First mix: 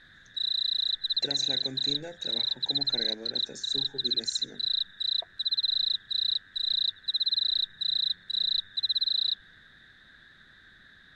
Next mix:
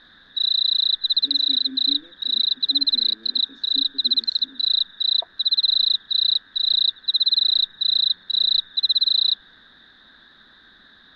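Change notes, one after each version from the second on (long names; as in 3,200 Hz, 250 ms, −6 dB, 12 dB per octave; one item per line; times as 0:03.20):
speech: add formant filter i
master: add graphic EQ with 10 bands 125 Hz −7 dB, 250 Hz +8 dB, 500 Hz +3 dB, 1,000 Hz +12 dB, 2,000 Hz −5 dB, 4,000 Hz +11 dB, 8,000 Hz −9 dB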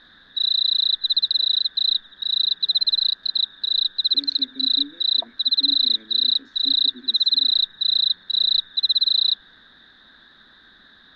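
speech: entry +2.90 s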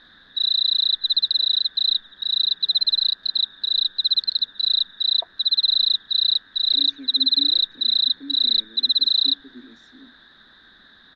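speech: entry +2.60 s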